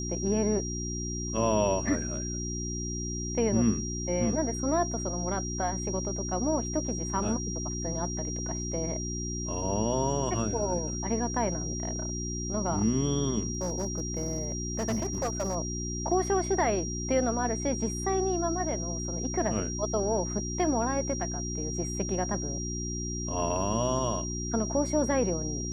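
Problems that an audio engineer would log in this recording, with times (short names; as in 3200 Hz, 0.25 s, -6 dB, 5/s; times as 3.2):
hum 60 Hz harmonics 6 -35 dBFS
tone 5700 Hz -36 dBFS
13.55–15.56 clipped -25 dBFS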